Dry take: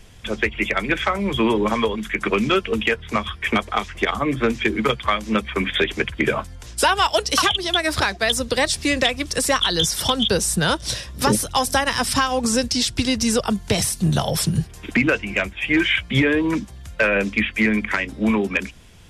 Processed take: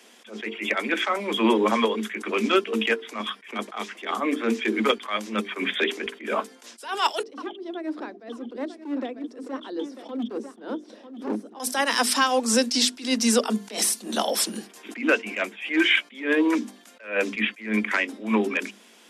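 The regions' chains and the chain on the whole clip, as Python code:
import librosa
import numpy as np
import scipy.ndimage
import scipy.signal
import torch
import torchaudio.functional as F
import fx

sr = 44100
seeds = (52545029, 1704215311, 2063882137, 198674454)

y = fx.chain(x, sr, fx.bandpass_q(hz=300.0, q=1.9),
    fx.clip_hard(threshold_db=-21.5),
    fx.echo_single(ms=946, db=-12.5), at=(7.23, 11.6))
y = scipy.signal.sosfilt(scipy.signal.butter(16, 210.0, 'highpass', fs=sr, output='sos'), y)
y = fx.hum_notches(y, sr, base_hz=50, count=9)
y = fx.attack_slew(y, sr, db_per_s=150.0)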